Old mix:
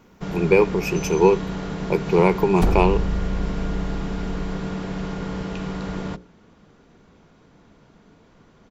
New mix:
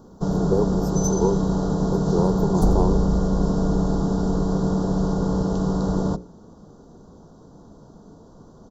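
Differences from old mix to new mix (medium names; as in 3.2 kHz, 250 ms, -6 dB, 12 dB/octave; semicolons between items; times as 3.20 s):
speech -6.5 dB; first sound +7.0 dB; master: add Butterworth band-stop 2.3 kHz, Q 0.57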